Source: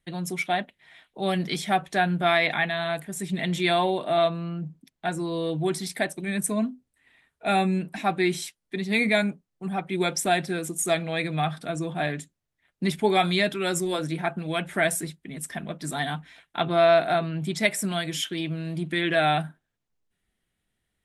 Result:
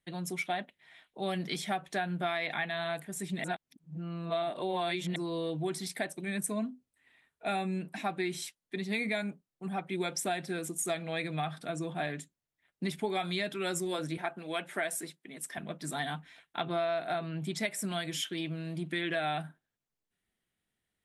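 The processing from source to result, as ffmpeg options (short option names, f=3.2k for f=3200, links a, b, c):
-filter_complex "[0:a]asettb=1/sr,asplit=3[a][b][c];[a]atrim=end=14.174[d];[b]atrim=start=14.17:end=15.58,asetpts=PTS-STARTPTS,afade=t=in:d=0.004:c=qsin,afade=t=out:st=1.406:d=0.004:c=qsin,highpass=280[e];[c]atrim=start=15.576[f];[d][e]acrossfade=d=0.004:c1=hsin:c2=qsin[g];[g][f]acrossfade=d=0.004:c1=qsin:c2=hsin,asplit=3[h][i][j];[h]atrim=end=3.442[k];[i]atrim=start=3.438:end=5.162,asetpts=PTS-STARTPTS,areverse[l];[j]atrim=start=5.158[m];[k][l]acrossfade=d=0.004:c1=hsin:c2=hsin[n];[n][m]acrossfade=d=0.004:c1=hsin:c2=hsin,lowshelf=f=76:g=-10.5,acompressor=threshold=-24dB:ratio=6,volume=-5dB"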